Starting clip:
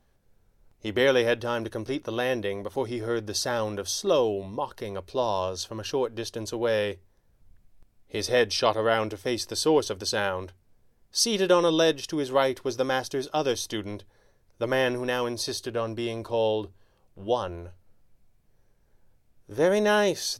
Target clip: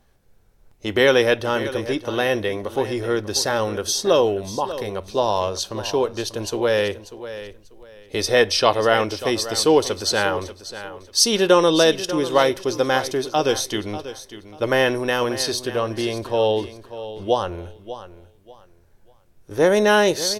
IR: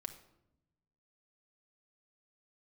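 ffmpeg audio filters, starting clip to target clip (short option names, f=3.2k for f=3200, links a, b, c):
-filter_complex "[0:a]aecho=1:1:591|1182|1773:0.211|0.0507|0.0122,asplit=2[a][b];[1:a]atrim=start_sample=2205,asetrate=74970,aresample=44100,lowshelf=f=430:g=-11.5[c];[b][c]afir=irnorm=-1:irlink=0,volume=-0.5dB[d];[a][d]amix=inputs=2:normalize=0,volume=4.5dB"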